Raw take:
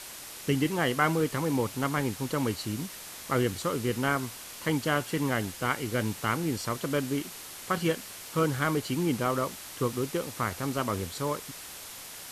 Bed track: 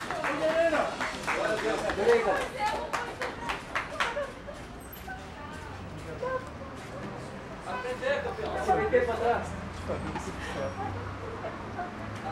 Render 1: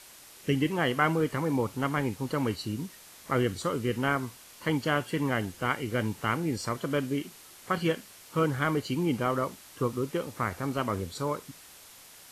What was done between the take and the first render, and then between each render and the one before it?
noise reduction from a noise print 8 dB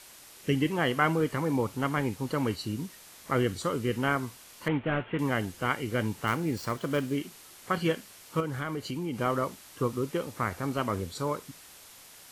0:04.68–0:05.19: variable-slope delta modulation 16 kbit/s
0:06.27–0:07.16: gap after every zero crossing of 0.052 ms
0:08.40–0:09.20: downward compressor 3 to 1, threshold −31 dBFS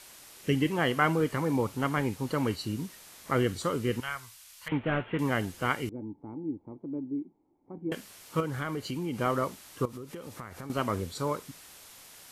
0:04.00–0:04.72: guitar amp tone stack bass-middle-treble 10-0-10
0:05.89–0:07.92: formant resonators in series u
0:09.85–0:10.70: downward compressor 10 to 1, threshold −37 dBFS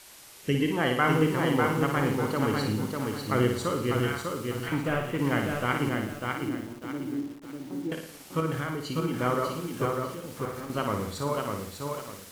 flutter between parallel walls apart 9.7 metres, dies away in 0.6 s
feedback echo at a low word length 598 ms, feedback 35%, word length 8 bits, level −3.5 dB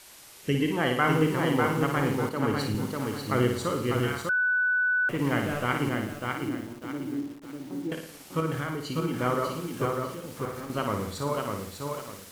0:02.29–0:02.75: multiband upward and downward expander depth 100%
0:04.29–0:05.09: beep over 1,490 Hz −21.5 dBFS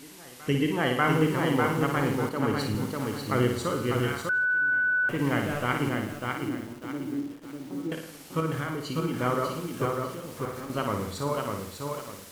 backwards echo 591 ms −23.5 dB
feedback echo with a swinging delay time 161 ms, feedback 48%, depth 125 cents, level −21.5 dB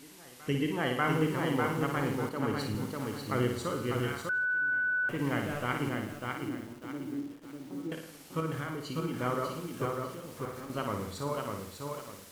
level −5 dB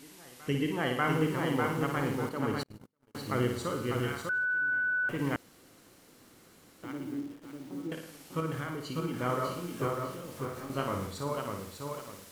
0:02.63–0:03.15: noise gate −31 dBFS, range −46 dB
0:05.36–0:06.83: fill with room tone
0:09.27–0:11.07: double-tracking delay 22 ms −5 dB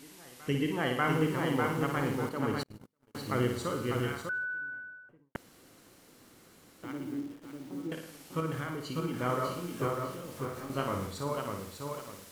0:03.95–0:05.35: fade out and dull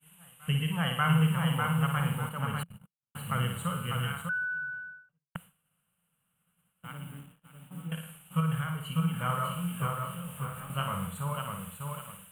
drawn EQ curve 110 Hz 0 dB, 170 Hz +11 dB, 320 Hz −25 dB, 480 Hz −8 dB, 1,400 Hz +4 dB, 2,000 Hz −4 dB, 2,900 Hz +8 dB, 5,200 Hz −30 dB, 8,800 Hz +8 dB, 14,000 Hz +5 dB
downward expander −43 dBFS

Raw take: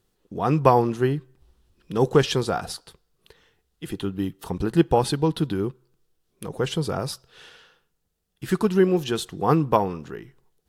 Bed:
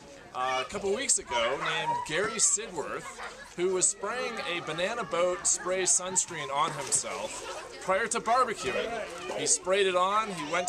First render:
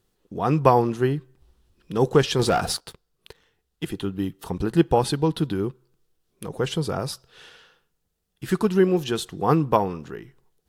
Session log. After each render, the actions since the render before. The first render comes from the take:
0:02.39–0:03.85: leveller curve on the samples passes 2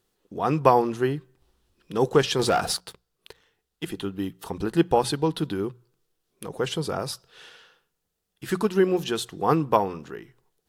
low-shelf EQ 190 Hz −7.5 dB
mains-hum notches 60/120/180 Hz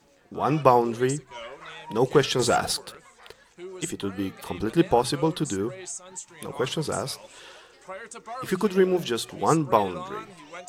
mix in bed −11.5 dB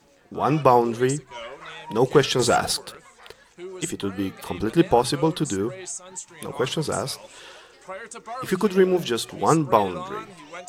level +2.5 dB
brickwall limiter −2 dBFS, peak gain reduction 2.5 dB

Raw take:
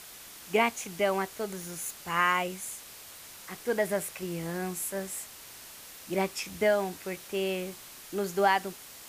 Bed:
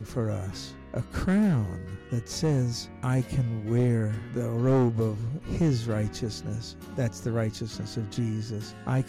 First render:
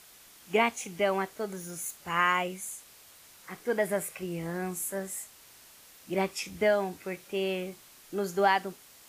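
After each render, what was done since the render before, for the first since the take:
noise reduction from a noise print 7 dB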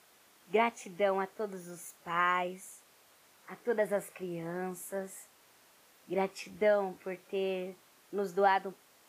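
high-pass filter 290 Hz 6 dB per octave
high-shelf EQ 2,100 Hz −11.5 dB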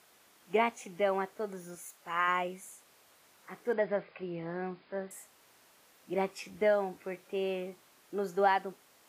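0:01.75–0:02.28: low-shelf EQ 350 Hz −9 dB
0:03.73–0:05.11: linear-phase brick-wall low-pass 5,100 Hz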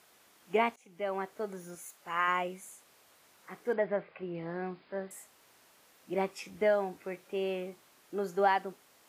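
0:00.76–0:01.37: fade in, from −21.5 dB
0:03.76–0:04.35: low-pass filter 3,000 Hz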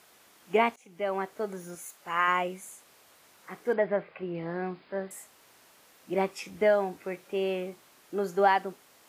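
level +4 dB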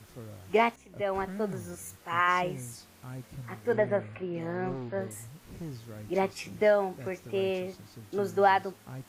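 mix in bed −16 dB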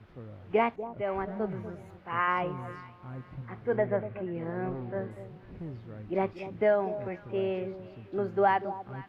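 high-frequency loss of the air 390 metres
delay that swaps between a low-pass and a high-pass 241 ms, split 970 Hz, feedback 52%, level −12 dB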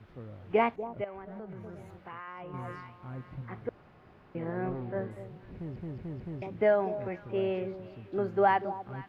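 0:01.04–0:02.54: downward compressor 8 to 1, threshold −39 dBFS
0:03.69–0:04.35: fill with room tone
0:05.54: stutter in place 0.22 s, 4 plays

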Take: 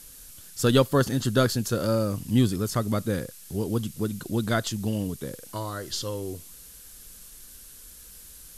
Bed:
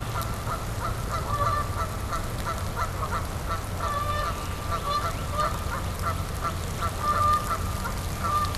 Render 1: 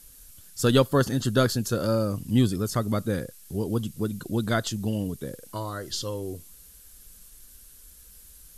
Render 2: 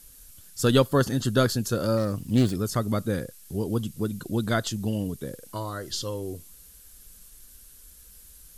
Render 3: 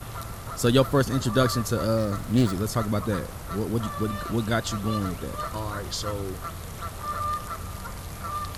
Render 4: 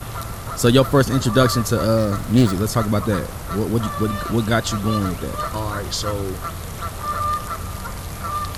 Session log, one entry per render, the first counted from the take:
broadband denoise 6 dB, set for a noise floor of −47 dBFS
0:01.97–0:02.55: phase distortion by the signal itself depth 0.22 ms
mix in bed −6.5 dB
level +6.5 dB; brickwall limiter −3 dBFS, peak gain reduction 2.5 dB

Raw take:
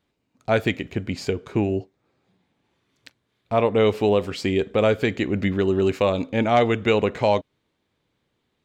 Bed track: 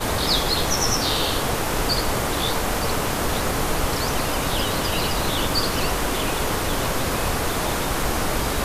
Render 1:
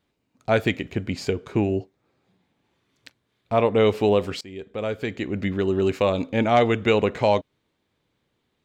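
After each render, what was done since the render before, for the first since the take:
0:04.41–0:06.60: fade in equal-power, from −22 dB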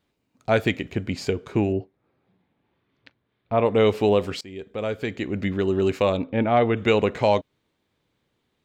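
0:01.72–0:03.66: high-frequency loss of the air 270 metres
0:06.17–0:06.77: high-frequency loss of the air 330 metres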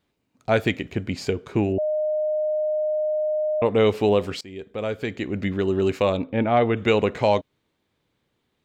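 0:01.78–0:03.62: beep over 613 Hz −20.5 dBFS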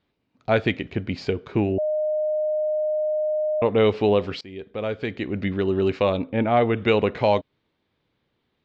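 low-pass filter 4,900 Hz 24 dB per octave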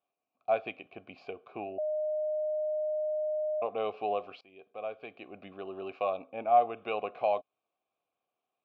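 formant filter a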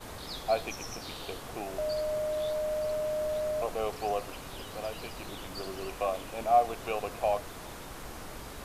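mix in bed track −20 dB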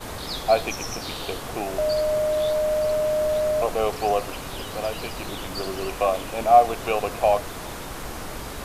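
level +9 dB

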